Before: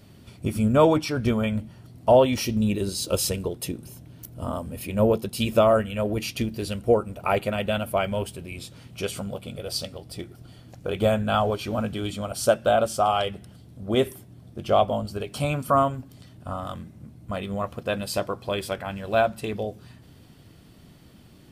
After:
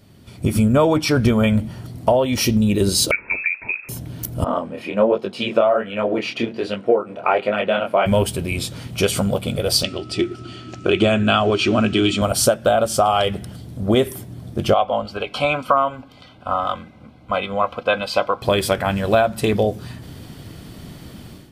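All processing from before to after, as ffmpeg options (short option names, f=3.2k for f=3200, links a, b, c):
-filter_complex "[0:a]asettb=1/sr,asplit=3[a][b][c];[a]atrim=end=3.114[d];[b]atrim=start=3.11:end=3.89,asetpts=PTS-STARTPTS,afade=t=in:d=0.004:c=qsin,afade=t=out:st=0.776:d=0.004:c=qsin,highpass=330,acompressor=threshold=-30dB:ratio=2.5:attack=3.2:release=140:knee=1:detection=peak,lowpass=f=2.4k:t=q:w=0.5098,lowpass=f=2.4k:t=q:w=0.6013,lowpass=f=2.4k:t=q:w=0.9,lowpass=f=2.4k:t=q:w=2.563,afreqshift=-2800[e];[c]atrim=start=3.886[f];[d][e]acrossfade=d=0.004:c1=hsin:c2=qsin[g];[g][f]acrossfade=d=0.004:c1=qsin:c2=hsin,asettb=1/sr,asplit=3[h][i][j];[h]atrim=end=4.444[k];[i]atrim=start=4.44:end=8.06,asetpts=PTS-STARTPTS,afade=t=in:d=0.004:c=qsin,afade=t=out:st=3.616:d=0.004:c=qsin,highpass=320,lowpass=2.8k,flanger=delay=19.5:depth=7.2:speed=1.3[l];[j]atrim=start=8.056[m];[k][l]acrossfade=d=0.004:c1=hsin:c2=qsin[n];[n][m]acrossfade=d=0.004:c1=qsin:c2=hsin,asettb=1/sr,asplit=3[o][p][q];[o]atrim=end=9.834[r];[p]atrim=start=9.83:end=12.22,asetpts=PTS-STARTPTS,afade=t=in:d=0.004:c=qsin,afade=t=out:st=2.386:d=0.004:c=qsin,aeval=exprs='val(0)+0.00158*sin(2*PI*1300*n/s)':c=same,highpass=110,equalizer=f=150:t=q:w=4:g=-9,equalizer=f=360:t=q:w=4:g=10,equalizer=f=500:t=q:w=4:g=-10,equalizer=f=870:t=q:w=4:g=-8,equalizer=f=2.7k:t=q:w=4:g=9,lowpass=f=7.5k:w=0.5412,lowpass=f=7.5k:w=1.3066[s];[q]atrim=start=12.216[t];[r][s]acrossfade=d=0.004:c1=hsin:c2=qsin[u];[u][t]acrossfade=d=0.004:c1=qsin:c2=hsin,asettb=1/sr,asplit=3[v][w][x];[v]atrim=end=14.744[y];[w]atrim=start=14.74:end=18.42,asetpts=PTS-STARTPTS,afade=t=in:d=0.004:c=qsin,afade=t=out:st=3.676:d=0.004:c=qsin,asuperstop=centerf=1800:order=12:qfactor=6.2,acrossover=split=540 4100:gain=0.2 1 0.0708[z][aa][ab];[z][aa][ab]amix=inputs=3:normalize=0,aecho=1:1:3.9:0.32,atrim=end_sample=162288[ac];[x]atrim=start=18.416[ad];[y][ac]acrossfade=d=0.004:c1=hsin:c2=qsin[ae];[ae][ad]acrossfade=d=0.004:c1=qsin:c2=hsin,acompressor=threshold=-25dB:ratio=6,bandreject=f=2.7k:w=29,dynaudnorm=f=260:g=3:m=13.5dB"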